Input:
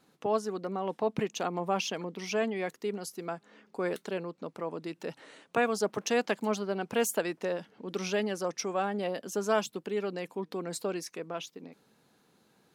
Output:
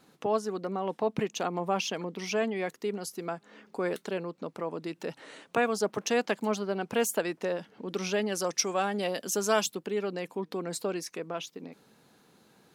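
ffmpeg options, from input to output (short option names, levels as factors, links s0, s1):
-filter_complex "[0:a]asettb=1/sr,asplit=3[s0][s1][s2];[s0]atrim=end=8.324[s3];[s1]atrim=start=8.32:end=9.75,asetpts=PTS-STARTPTS,afade=t=in:d=0.004:c=qsin,afade=t=out:st=1.426:d=0.004:c=qsin,highshelf=f=2700:g=10[s4];[s2]atrim=start=9.746[s5];[s3][s4]acrossfade=d=0.004:c1=hsin:c2=qsin[s6];[s6][s5]acrossfade=d=0.004:c1=qsin:c2=hsin,asplit=2[s7][s8];[s8]acompressor=threshold=0.00562:ratio=6,volume=0.794[s9];[s7][s9]amix=inputs=2:normalize=0"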